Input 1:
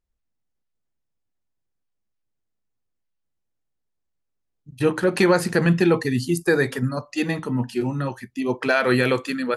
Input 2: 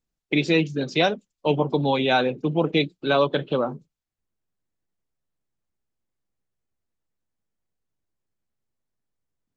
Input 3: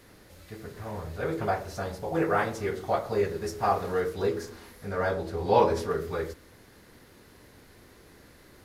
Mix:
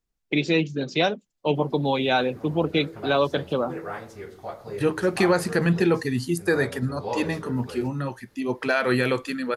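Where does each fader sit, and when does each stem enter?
-3.0, -1.5, -8.5 dB; 0.00, 0.00, 1.55 s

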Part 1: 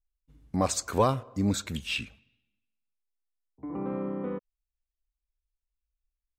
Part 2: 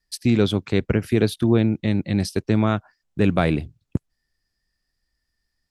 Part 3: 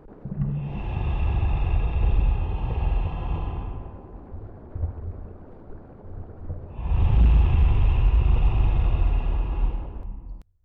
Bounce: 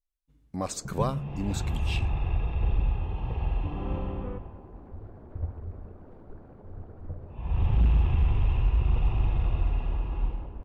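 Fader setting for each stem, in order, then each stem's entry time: -5.5 dB, off, -4.5 dB; 0.00 s, off, 0.60 s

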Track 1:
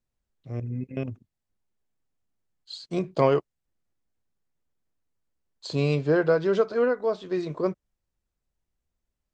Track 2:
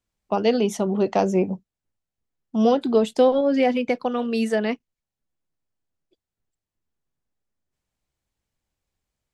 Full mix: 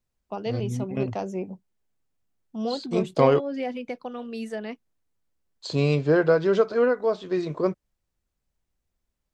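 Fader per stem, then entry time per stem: +2.0, -10.5 dB; 0.00, 0.00 s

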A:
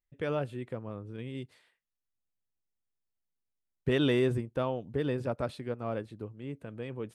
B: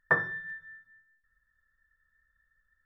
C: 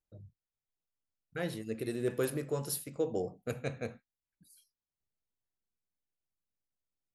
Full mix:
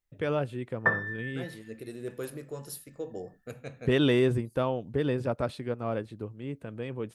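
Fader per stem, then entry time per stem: +3.0, 0.0, -5.0 dB; 0.00, 0.75, 0.00 s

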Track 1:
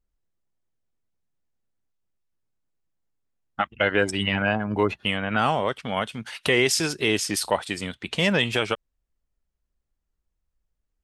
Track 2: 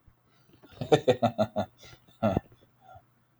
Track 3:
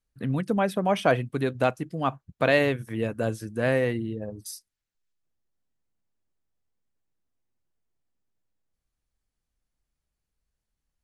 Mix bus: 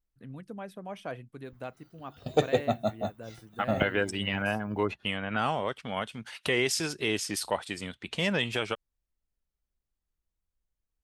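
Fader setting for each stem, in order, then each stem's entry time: -6.5, -2.5, -16.5 dB; 0.00, 1.45, 0.00 s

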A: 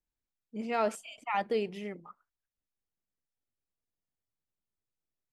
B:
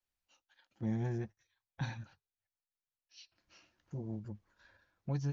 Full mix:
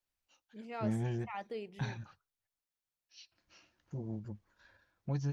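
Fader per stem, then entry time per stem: -11.5, +0.5 dB; 0.00, 0.00 s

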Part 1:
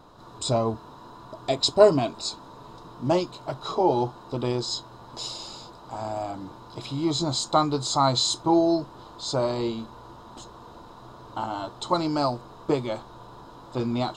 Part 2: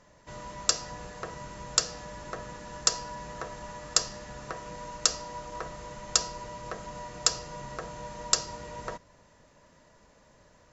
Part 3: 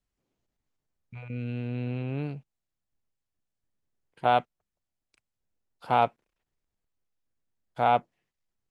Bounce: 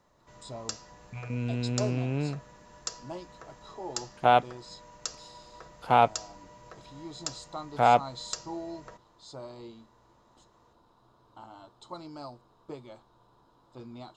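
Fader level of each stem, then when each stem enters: -18.0, -11.5, +2.0 dB; 0.00, 0.00, 0.00 s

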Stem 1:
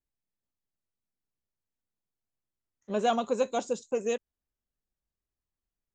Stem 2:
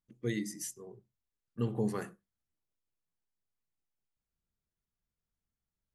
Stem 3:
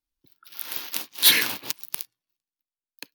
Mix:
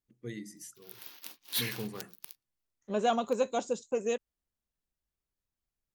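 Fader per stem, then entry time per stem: -1.5, -7.0, -16.0 dB; 0.00, 0.00, 0.30 s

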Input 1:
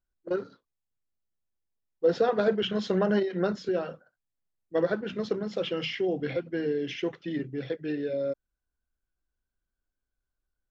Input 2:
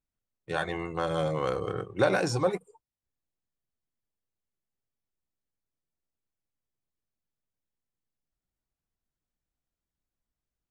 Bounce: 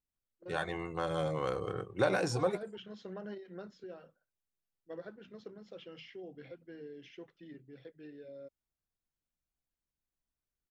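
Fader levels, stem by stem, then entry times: -19.0, -5.0 dB; 0.15, 0.00 s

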